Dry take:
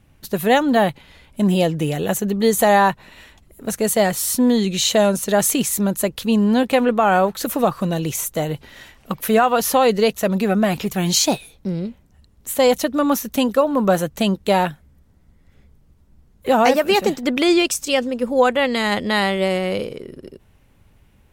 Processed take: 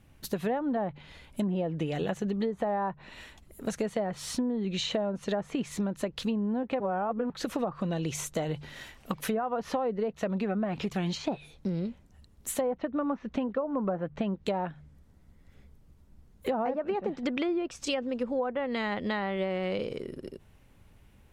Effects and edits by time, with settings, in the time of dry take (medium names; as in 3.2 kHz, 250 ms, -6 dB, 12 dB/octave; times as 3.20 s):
6.80–7.30 s: reverse
12.61–14.37 s: low-pass 2.3 kHz
whole clip: de-hum 49.51 Hz, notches 3; low-pass that closes with the level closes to 1.1 kHz, closed at -12 dBFS; compression, threshold -24 dBFS; trim -3.5 dB